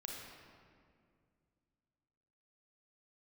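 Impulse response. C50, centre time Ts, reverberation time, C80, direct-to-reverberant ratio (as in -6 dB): 0.0 dB, 97 ms, 2.2 s, 2.0 dB, -1.5 dB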